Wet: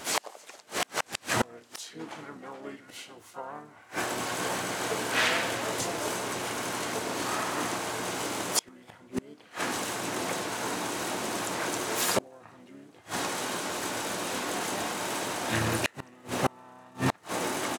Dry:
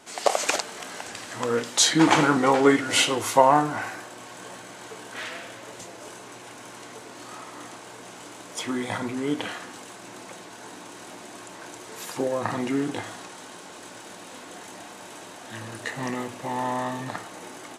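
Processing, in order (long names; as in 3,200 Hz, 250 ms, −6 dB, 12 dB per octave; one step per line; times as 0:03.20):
pitch-shifted copies added −5 semitones −10 dB, +5 semitones −9 dB, +7 semitones −9 dB
gate with flip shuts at −20 dBFS, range −33 dB
level +8.5 dB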